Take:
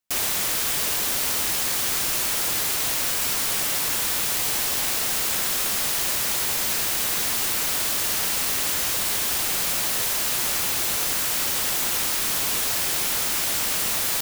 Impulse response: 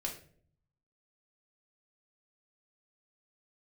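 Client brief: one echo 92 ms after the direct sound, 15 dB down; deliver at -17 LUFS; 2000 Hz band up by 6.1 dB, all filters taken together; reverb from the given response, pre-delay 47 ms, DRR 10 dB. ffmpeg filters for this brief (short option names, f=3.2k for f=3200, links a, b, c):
-filter_complex "[0:a]equalizer=f=2k:t=o:g=7.5,aecho=1:1:92:0.178,asplit=2[a][b];[1:a]atrim=start_sample=2205,adelay=47[c];[b][c]afir=irnorm=-1:irlink=0,volume=-11dB[d];[a][d]amix=inputs=2:normalize=0,volume=2.5dB"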